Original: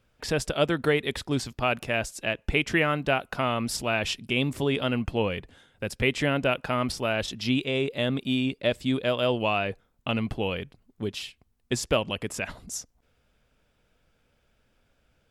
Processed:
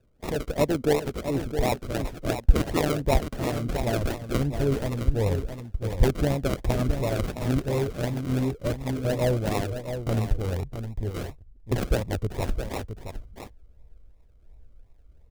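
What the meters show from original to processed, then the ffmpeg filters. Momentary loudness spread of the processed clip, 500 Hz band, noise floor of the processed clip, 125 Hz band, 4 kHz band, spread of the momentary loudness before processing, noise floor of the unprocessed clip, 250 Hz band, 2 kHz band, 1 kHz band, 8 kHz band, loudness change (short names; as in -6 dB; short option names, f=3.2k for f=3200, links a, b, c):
9 LU, 0.0 dB, -55 dBFS, +6.0 dB, -8.0 dB, 10 LU, -70 dBFS, 0.0 dB, -8.5 dB, -2.0 dB, -3.0 dB, 0.0 dB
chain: -filter_complex "[0:a]asubboost=boost=12:cutoff=62,acrossover=split=2200[a][b];[a]aeval=exprs='val(0)*(1-0.5/2+0.5/2*cos(2*PI*1.3*n/s))':c=same[c];[b]aeval=exprs='val(0)*(1-0.5/2-0.5/2*cos(2*PI*1.3*n/s))':c=same[d];[c][d]amix=inputs=2:normalize=0,acrossover=split=690[e][f];[f]acrusher=samples=40:mix=1:aa=0.000001:lfo=1:lforange=24:lforate=2.8[g];[e][g]amix=inputs=2:normalize=0,aecho=1:1:664:0.376,volume=3.5dB"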